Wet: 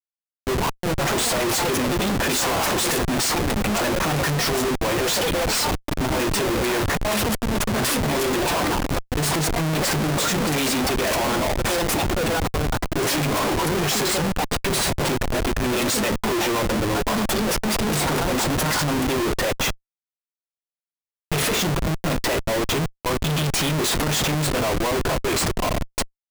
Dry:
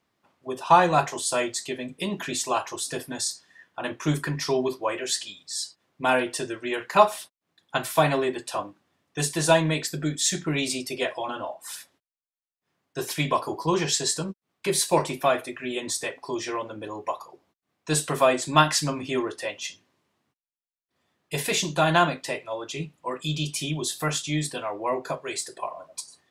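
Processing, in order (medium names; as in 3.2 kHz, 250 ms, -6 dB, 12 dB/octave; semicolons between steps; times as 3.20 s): compressor with a negative ratio -27 dBFS, ratio -0.5; ever faster or slower copies 647 ms, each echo +6 st, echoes 3, each echo -6 dB; Schmitt trigger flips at -32 dBFS; trim +8 dB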